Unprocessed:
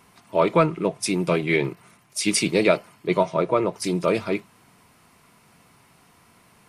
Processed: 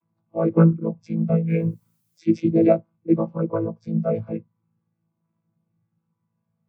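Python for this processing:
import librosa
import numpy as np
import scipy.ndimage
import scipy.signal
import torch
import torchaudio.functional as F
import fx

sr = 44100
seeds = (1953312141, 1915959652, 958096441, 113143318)

y = fx.chord_vocoder(x, sr, chord='bare fifth', root=45)
y = fx.dmg_noise_colour(y, sr, seeds[0], colour='blue', level_db=-51.0, at=(1.47, 2.18), fade=0.02)
y = fx.spectral_expand(y, sr, expansion=1.5)
y = y * 10.0 ** (3.0 / 20.0)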